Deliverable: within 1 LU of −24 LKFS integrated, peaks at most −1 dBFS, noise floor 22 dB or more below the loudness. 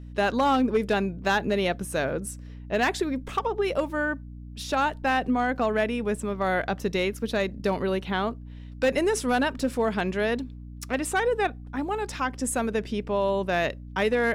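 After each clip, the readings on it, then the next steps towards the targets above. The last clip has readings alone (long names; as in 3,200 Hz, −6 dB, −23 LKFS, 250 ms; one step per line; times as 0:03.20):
share of clipped samples 0.4%; peaks flattened at −16.0 dBFS; mains hum 60 Hz; hum harmonics up to 300 Hz; level of the hum −38 dBFS; integrated loudness −26.5 LKFS; sample peak −16.0 dBFS; target loudness −24.0 LKFS
→ clipped peaks rebuilt −16 dBFS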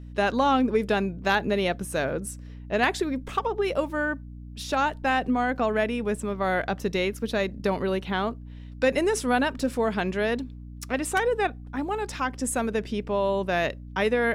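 share of clipped samples 0.0%; mains hum 60 Hz; hum harmonics up to 300 Hz; level of the hum −38 dBFS
→ mains-hum notches 60/120/180/240/300 Hz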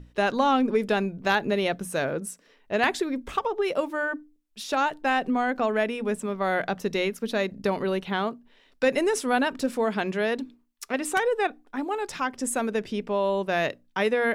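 mains hum none found; integrated loudness −26.5 LKFS; sample peak −7.5 dBFS; target loudness −24.0 LKFS
→ level +2.5 dB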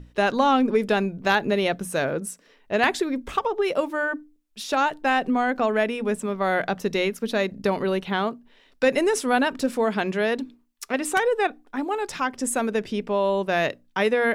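integrated loudness −24.0 LKFS; sample peak −5.0 dBFS; background noise floor −59 dBFS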